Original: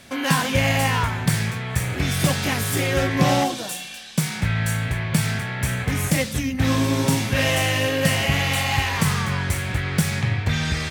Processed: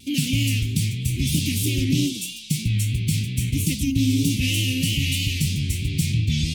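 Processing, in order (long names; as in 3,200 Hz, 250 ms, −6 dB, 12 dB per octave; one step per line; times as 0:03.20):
elliptic band-stop filter 310–2,600 Hz, stop band 70 dB
parametric band 1,700 Hz −12 dB 0.45 octaves
in parallel at +2 dB: brickwall limiter −15 dBFS, peak gain reduction 8 dB
on the sum: phase-vocoder stretch with locked phases 0.6×
pitch vibrato 3.1 Hz 61 cents
level −3.5 dB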